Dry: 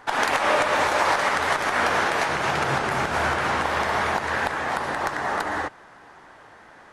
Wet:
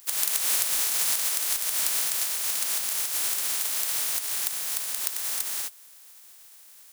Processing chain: spectral contrast lowered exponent 0.16; RIAA curve recording; gain -14.5 dB

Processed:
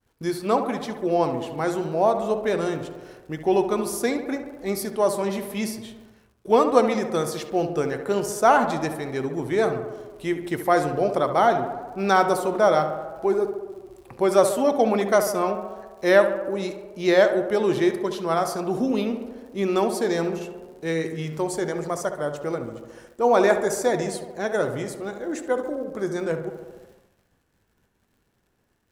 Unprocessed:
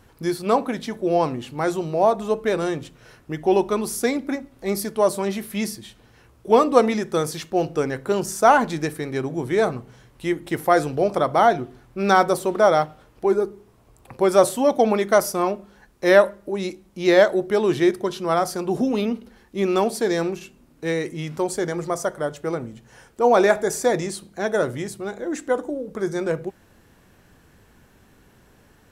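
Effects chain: crackle 110/s -42 dBFS; tape echo 70 ms, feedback 79%, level -8.5 dB, low-pass 2100 Hz; expander -43 dBFS; gain -2.5 dB

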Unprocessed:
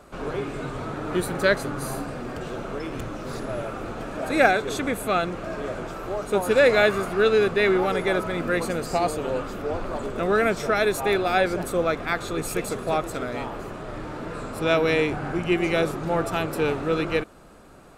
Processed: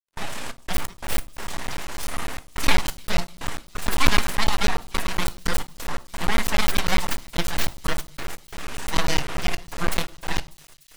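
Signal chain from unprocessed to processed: RIAA curve recording; in parallel at +0.5 dB: compressor, threshold -29 dBFS, peak gain reduction 16 dB; on the sum: granular stretch 0.61×, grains 55 ms; full-wave rectifier; step gate ".xx.x.x.xxxxxx" 88 bpm -24 dB; crossover distortion -48 dBFS; thin delay 0.297 s, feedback 80%, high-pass 4300 Hz, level -20 dB; on a send at -12 dB: reverb RT60 0.45 s, pre-delay 4 ms; on the sum: crackling interface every 0.10 s, samples 512, zero, from 0.57; Doppler distortion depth 0.34 ms

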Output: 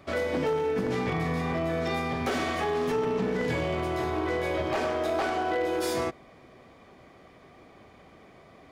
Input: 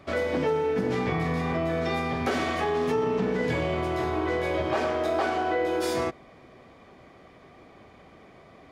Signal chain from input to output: high shelf 8000 Hz +5.5 dB; wavefolder -19 dBFS; gain -1.5 dB

